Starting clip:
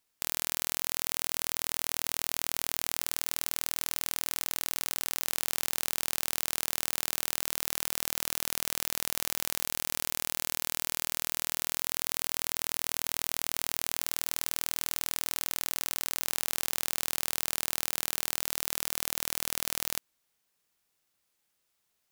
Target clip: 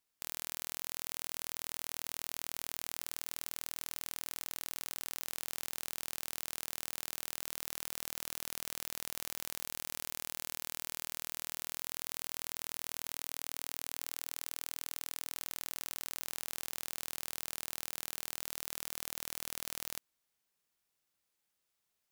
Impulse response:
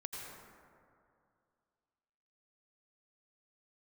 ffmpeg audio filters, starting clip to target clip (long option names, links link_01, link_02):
-filter_complex "[0:a]asettb=1/sr,asplit=3[link_01][link_02][link_03];[link_01]atrim=end=13.124[link_04];[link_02]atrim=start=13.12:end=15.35,asetpts=PTS-STARTPTS,afade=type=in:duration=0.004:curve=qsin,afade=type=out:start_time=2.226:duration=0.004:curve=qsin,highpass=frequency=330:poles=1[link_05];[link_03]atrim=start=15.346[link_06];[link_04][link_05]acrossfade=duration=0.004:curve1=hsin:curve2=qsin[link_07];[link_07][link_06]acrossfade=duration=0.004:curve1=qsin:curve2=hsin,asoftclip=type=tanh:threshold=-4.5dB,volume=-6dB"